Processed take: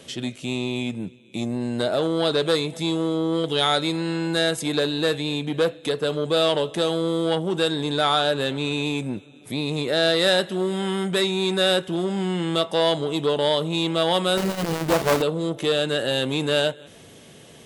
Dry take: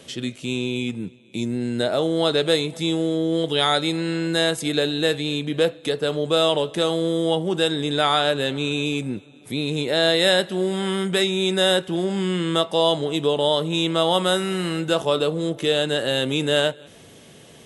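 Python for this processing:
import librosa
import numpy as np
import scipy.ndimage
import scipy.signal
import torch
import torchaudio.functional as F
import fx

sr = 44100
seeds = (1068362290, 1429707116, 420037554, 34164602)

y = fx.halfwave_hold(x, sr, at=(14.37, 15.22))
y = fx.transformer_sat(y, sr, knee_hz=990.0)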